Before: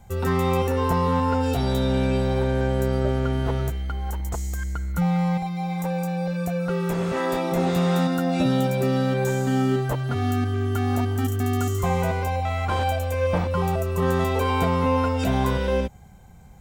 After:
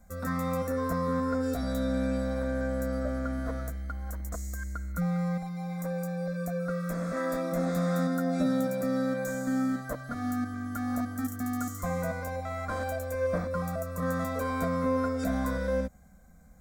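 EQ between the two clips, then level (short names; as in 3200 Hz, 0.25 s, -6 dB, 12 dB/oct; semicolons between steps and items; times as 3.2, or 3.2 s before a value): fixed phaser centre 580 Hz, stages 8; -4.0 dB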